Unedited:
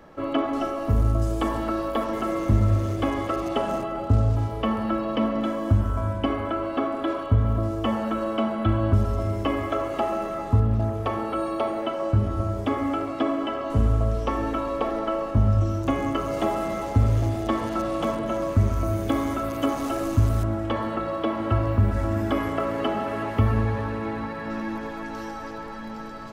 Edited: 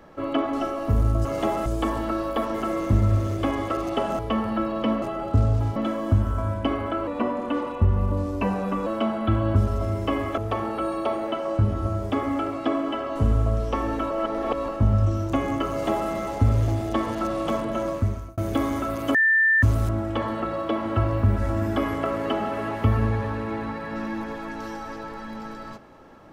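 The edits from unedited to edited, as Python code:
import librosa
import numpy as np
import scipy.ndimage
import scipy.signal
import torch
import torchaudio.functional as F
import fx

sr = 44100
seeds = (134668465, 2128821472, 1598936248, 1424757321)

y = fx.edit(x, sr, fx.move(start_s=3.78, length_s=0.74, to_s=5.35),
    fx.speed_span(start_s=6.66, length_s=1.58, speed=0.88),
    fx.cut(start_s=9.75, length_s=1.17),
    fx.reverse_span(start_s=14.65, length_s=0.58),
    fx.duplicate(start_s=16.24, length_s=0.41, to_s=1.25),
    fx.fade_out_span(start_s=18.41, length_s=0.51),
    fx.bleep(start_s=19.69, length_s=0.48, hz=1780.0, db=-15.5), tone=tone)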